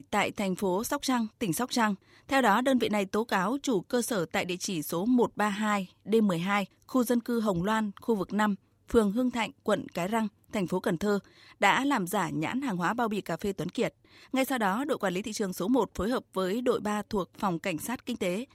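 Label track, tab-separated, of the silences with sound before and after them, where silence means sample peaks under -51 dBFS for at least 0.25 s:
8.560000	8.880000	silence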